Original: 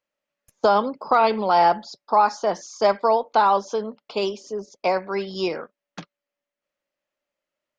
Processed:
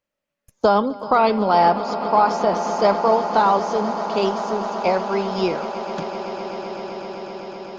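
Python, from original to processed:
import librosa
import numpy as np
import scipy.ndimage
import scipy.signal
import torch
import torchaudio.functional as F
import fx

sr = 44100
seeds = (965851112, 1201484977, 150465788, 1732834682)

p1 = fx.low_shelf(x, sr, hz=240.0, db=11.0)
y = p1 + fx.echo_swell(p1, sr, ms=128, loudest=8, wet_db=-16.0, dry=0)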